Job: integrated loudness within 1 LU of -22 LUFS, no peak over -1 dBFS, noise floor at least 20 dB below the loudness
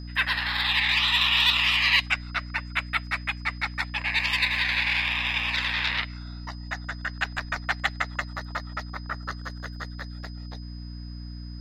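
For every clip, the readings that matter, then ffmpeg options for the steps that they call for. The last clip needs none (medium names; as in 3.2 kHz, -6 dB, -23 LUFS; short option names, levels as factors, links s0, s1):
hum 60 Hz; highest harmonic 300 Hz; hum level -35 dBFS; steady tone 5 kHz; tone level -49 dBFS; loudness -24.5 LUFS; peak level -6.5 dBFS; loudness target -22.0 LUFS
-> -af "bandreject=f=60:t=h:w=6,bandreject=f=120:t=h:w=6,bandreject=f=180:t=h:w=6,bandreject=f=240:t=h:w=6,bandreject=f=300:t=h:w=6"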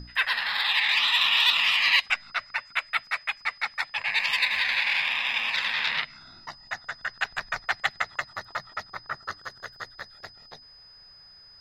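hum not found; steady tone 5 kHz; tone level -49 dBFS
-> -af "bandreject=f=5000:w=30"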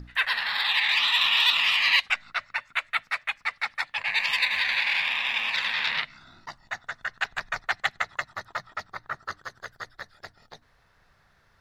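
steady tone not found; loudness -24.5 LUFS; peak level -6.5 dBFS; loudness target -22.0 LUFS
-> -af "volume=1.33"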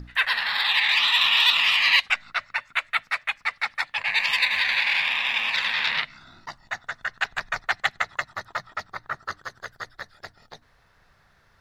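loudness -22.0 LUFS; peak level -4.0 dBFS; noise floor -61 dBFS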